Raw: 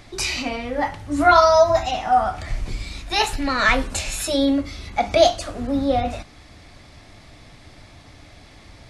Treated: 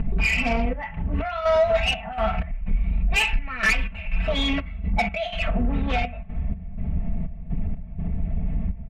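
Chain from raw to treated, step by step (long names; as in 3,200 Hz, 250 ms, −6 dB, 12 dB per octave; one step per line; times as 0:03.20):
dynamic equaliser 2,300 Hz, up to +4 dB, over −37 dBFS, Q 1.6
low-pass that shuts in the quiet parts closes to 340 Hz, open at −11 dBFS
in parallel at +3 dB: upward compression, threshold −20 dBFS
on the sum: drawn EQ curve 190 Hz 0 dB, 310 Hz −26 dB, 650 Hz −9 dB, 1,000 Hz −12 dB, 1,600 Hz −7 dB, 2,700 Hz +5 dB, 5,100 Hz −27 dB, 8,500 Hz −20 dB
downward compressor 5 to 1, threshold −25 dBFS, peak gain reduction 18.5 dB
gate pattern "xxx.x.xx.x." 62 BPM −12 dB
soft clipping −25 dBFS, distortion −14 dB
comb filter 4.5 ms, depth 87%
level +7 dB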